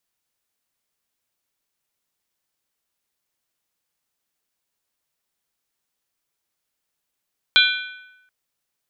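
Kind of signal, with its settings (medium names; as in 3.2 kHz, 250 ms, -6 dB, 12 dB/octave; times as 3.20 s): skin hit length 0.73 s, lowest mode 1.5 kHz, modes 5, decay 0.98 s, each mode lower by 0 dB, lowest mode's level -15 dB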